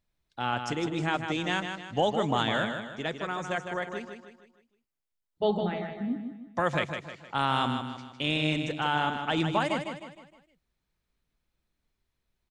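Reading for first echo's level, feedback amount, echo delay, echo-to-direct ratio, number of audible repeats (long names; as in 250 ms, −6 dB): −7.0 dB, 43%, 155 ms, −6.0 dB, 4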